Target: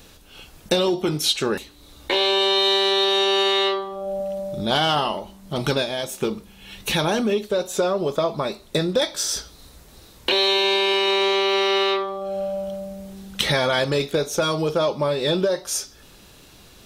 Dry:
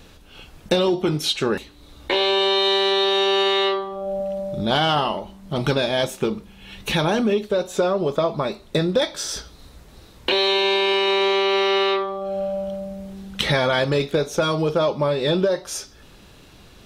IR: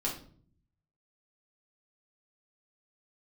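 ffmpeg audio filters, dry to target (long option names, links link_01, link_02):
-filter_complex "[0:a]highshelf=frequency=11000:gain=5.5,asettb=1/sr,asplit=3[link_01][link_02][link_03];[link_01]atrim=end=5.824[link_04];[link_02]atrim=start=5.82:end=6.22,asetpts=PTS-STARTPTS,afade=type=in:duration=0.004:curve=qsin,afade=type=out:start_time=0.396:duration=0.004:curve=qsin,acompressor=threshold=-25dB:ratio=2.5[link_05];[link_03]atrim=start=6.216[link_06];[link_04][link_05]acrossfade=duration=0.004:curve1=hsin:curve2=qsin[link_07];[link_07][link_06]acrossfade=duration=0.004:curve1=qsin:curve2=hsin,bass=frequency=250:gain=-2,treble=frequency=4000:gain=5,volume=-1dB"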